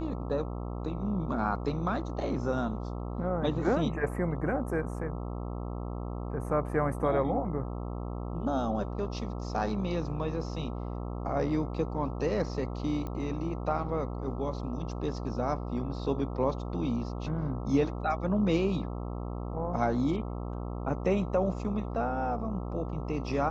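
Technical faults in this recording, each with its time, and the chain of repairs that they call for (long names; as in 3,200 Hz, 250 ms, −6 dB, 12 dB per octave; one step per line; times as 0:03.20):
mains buzz 60 Hz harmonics 22 −36 dBFS
0:13.07: click −25 dBFS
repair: click removal
hum removal 60 Hz, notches 22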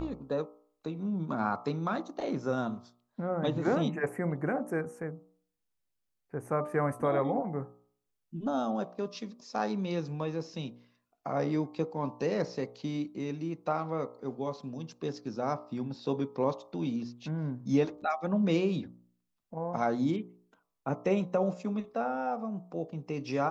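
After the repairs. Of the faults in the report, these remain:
none of them is left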